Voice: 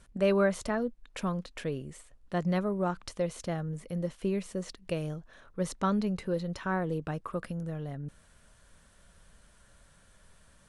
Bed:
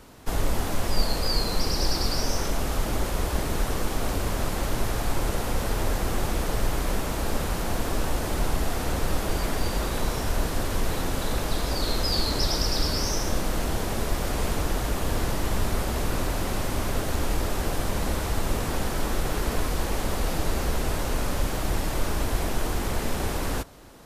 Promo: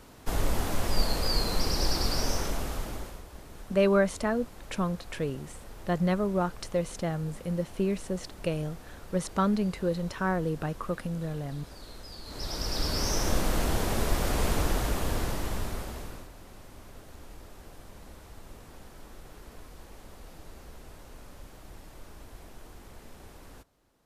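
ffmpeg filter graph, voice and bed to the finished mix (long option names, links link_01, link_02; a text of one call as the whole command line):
ffmpeg -i stem1.wav -i stem2.wav -filter_complex "[0:a]adelay=3550,volume=2.5dB[link_01];[1:a]volume=17dB,afade=type=out:start_time=2.29:duration=0.94:silence=0.133352,afade=type=in:start_time=12.23:duration=1.06:silence=0.105925,afade=type=out:start_time=14.61:duration=1.68:silence=0.0891251[link_02];[link_01][link_02]amix=inputs=2:normalize=0" out.wav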